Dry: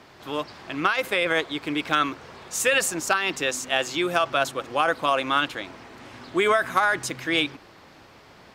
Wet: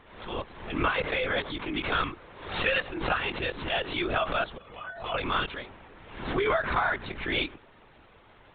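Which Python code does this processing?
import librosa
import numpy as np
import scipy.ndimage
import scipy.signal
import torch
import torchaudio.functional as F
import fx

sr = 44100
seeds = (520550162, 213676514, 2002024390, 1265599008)

y = fx.low_shelf(x, sr, hz=490.0, db=6.5, at=(0.5, 1.07))
y = fx.stiff_resonator(y, sr, f0_hz=220.0, decay_s=0.37, stiffness=0.008, at=(4.57, 5.14))
y = fx.lpc_vocoder(y, sr, seeds[0], excitation='whisper', order=16)
y = fx.pre_swell(y, sr, db_per_s=77.0)
y = y * 10.0 ** (-5.5 / 20.0)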